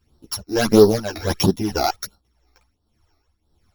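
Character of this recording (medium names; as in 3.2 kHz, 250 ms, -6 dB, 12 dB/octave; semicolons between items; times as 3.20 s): a buzz of ramps at a fixed pitch in blocks of 8 samples; phasing stages 12, 1.5 Hz, lowest notch 160–2300 Hz; tremolo triangle 1.7 Hz, depth 80%; a shimmering, thickened sound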